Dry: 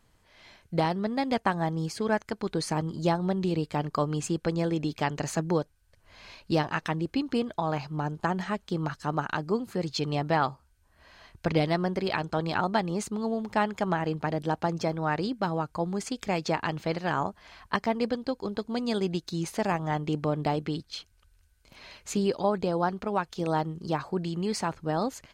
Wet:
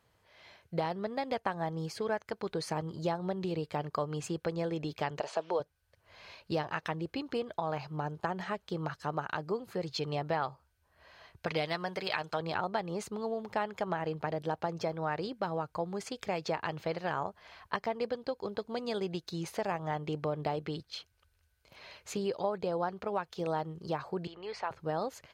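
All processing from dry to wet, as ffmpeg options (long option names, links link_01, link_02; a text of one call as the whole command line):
ffmpeg -i in.wav -filter_complex "[0:a]asettb=1/sr,asplit=3[link_01][link_02][link_03];[link_01]atrim=end=5.204[link_04];[link_02]atrim=start=5.2:end=5.6,asetpts=PTS-STARTPTS,afade=type=in:duration=0.004:curve=qsin,afade=type=out:start_time=0.396:duration=0.004:curve=qsin,acrusher=bits=7:mix=0:aa=0.5,highpass=410,equalizer=frequency=430:width_type=q:width=4:gain=4,equalizer=frequency=630:width_type=q:width=4:gain=7,equalizer=frequency=940:width_type=q:width=4:gain=5,equalizer=frequency=1900:width_type=q:width=4:gain=-5,equalizer=frequency=3200:width_type=q:width=4:gain=5,equalizer=frequency=6500:width_type=q:width=4:gain=-8,lowpass=frequency=7400:width=0.5412,lowpass=frequency=7400:width=1.3066[link_05];[link_03]atrim=start=5.596[link_06];[link_04][link_05]acrossfade=duration=0.004:curve1=hsin:curve2=qsin[link_07];[link_07][link_06]acrossfade=duration=0.004:curve1=qsin:curve2=hsin,asettb=1/sr,asplit=3[link_08][link_09][link_10];[link_08]atrim=end=11.464[link_11];[link_09]atrim=start=11.46:end=12.4,asetpts=PTS-STARTPTS,afade=type=in:duration=0.004:curve=qsin,afade=type=out:start_time=0.936:duration=0.004:curve=qsin,tiltshelf=frequency=860:gain=-6,aecho=1:1:6.6:0.31,atrim=end_sample=41454[link_12];[link_10]atrim=start=12.396[link_13];[link_11][link_12]acrossfade=duration=0.004:curve1=hsin:curve2=qsin[link_14];[link_14][link_13]acrossfade=duration=0.004:curve1=qsin:curve2=hsin,asettb=1/sr,asplit=3[link_15][link_16][link_17];[link_15]atrim=end=24.274[link_18];[link_16]atrim=start=24.27:end=24.71,asetpts=PTS-STARTPTS,afade=type=in:duration=0.004:curve=qsin,afade=type=out:start_time=0.436:duration=0.004:curve=qsin,highpass=570,lowpass=3300,aeval=exprs='val(0)+0.001*(sin(2*PI*50*n/s)+sin(2*PI*2*50*n/s)/2+sin(2*PI*3*50*n/s)/3+sin(2*PI*4*50*n/s)/4+sin(2*PI*5*50*n/s)/5)':channel_layout=same[link_19];[link_17]atrim=start=24.706[link_20];[link_18][link_19]acrossfade=duration=0.004:curve1=hsin:curve2=qsin[link_21];[link_21][link_20]acrossfade=duration=0.004:curve1=qsin:curve2=hsin,equalizer=frequency=250:width_type=o:width=1:gain=-8,equalizer=frequency=500:width_type=o:width=1:gain=4,equalizer=frequency=8000:width_type=o:width=1:gain=-6,acompressor=threshold=-29dB:ratio=2,highpass=76,volume=-2.5dB" out.wav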